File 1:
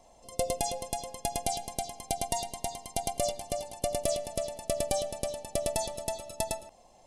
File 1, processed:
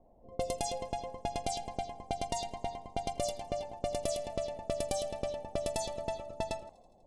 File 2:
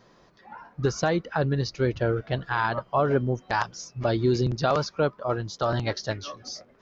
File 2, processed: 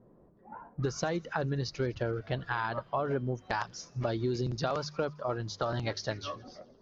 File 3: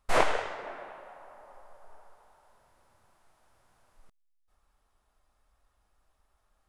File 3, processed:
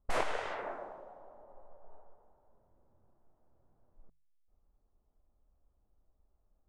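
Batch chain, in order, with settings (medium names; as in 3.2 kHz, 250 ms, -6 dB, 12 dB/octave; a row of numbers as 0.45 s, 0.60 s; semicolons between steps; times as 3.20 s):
hum notches 50/100/150 Hz; level-controlled noise filter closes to 430 Hz, open at -25.5 dBFS; compression 3:1, threshold -32 dBFS; on a send: feedback echo behind a high-pass 82 ms, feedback 72%, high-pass 3.2 kHz, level -23 dB; on the sum: trim +1 dB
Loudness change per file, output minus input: -4.0 LU, -7.0 LU, -7.0 LU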